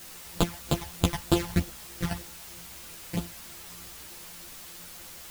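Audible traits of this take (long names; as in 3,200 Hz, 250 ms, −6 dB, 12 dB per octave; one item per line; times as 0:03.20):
a buzz of ramps at a fixed pitch in blocks of 256 samples
phaser sweep stages 12, 3.2 Hz, lowest notch 380–2,000 Hz
a quantiser's noise floor 8 bits, dither triangular
a shimmering, thickened sound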